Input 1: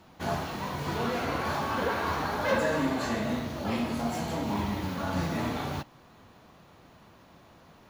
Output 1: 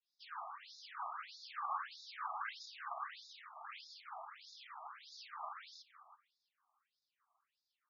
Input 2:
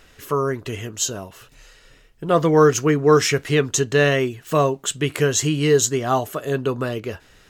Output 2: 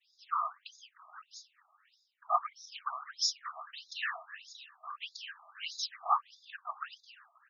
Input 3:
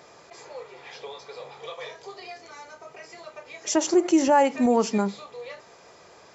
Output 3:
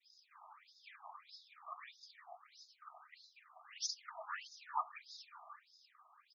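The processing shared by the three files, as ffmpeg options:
-filter_complex "[0:a]equalizer=f=5k:t=o:w=0.22:g=12.5,agate=range=-33dB:threshold=-45dB:ratio=3:detection=peak,asplit=2[a][b];[b]adelay=334,lowpass=f=4.9k:p=1,volume=-14dB,asplit=2[c][d];[d]adelay=334,lowpass=f=4.9k:p=1,volume=0.22[e];[a][c][e]amix=inputs=3:normalize=0,afftfilt=real='hypot(re,im)*cos(2*PI*random(0))':imag='hypot(re,im)*sin(2*PI*random(1))':win_size=512:overlap=0.75,equalizer=f=1.2k:t=o:w=0.29:g=9,afftfilt=real='re*between(b*sr/1024,890*pow(5000/890,0.5+0.5*sin(2*PI*1.6*pts/sr))/1.41,890*pow(5000/890,0.5+0.5*sin(2*PI*1.6*pts/sr))*1.41)':imag='im*between(b*sr/1024,890*pow(5000/890,0.5+0.5*sin(2*PI*1.6*pts/sr))/1.41,890*pow(5000/890,0.5+0.5*sin(2*PI*1.6*pts/sr))*1.41)':win_size=1024:overlap=0.75,volume=-5dB"

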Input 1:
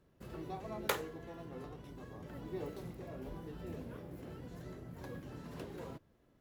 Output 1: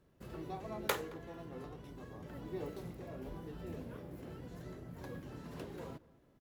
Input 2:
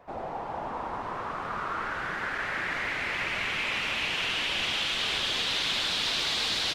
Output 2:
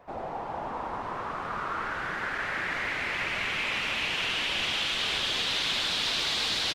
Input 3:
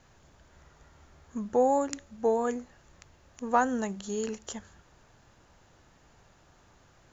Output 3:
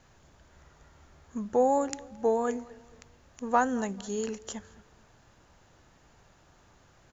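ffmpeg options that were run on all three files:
-filter_complex "[0:a]asplit=2[a][b];[b]adelay=220,lowpass=f=1.8k:p=1,volume=-20.5dB,asplit=2[c][d];[d]adelay=220,lowpass=f=1.8k:p=1,volume=0.39,asplit=2[e][f];[f]adelay=220,lowpass=f=1.8k:p=1,volume=0.39[g];[a][c][e][g]amix=inputs=4:normalize=0"

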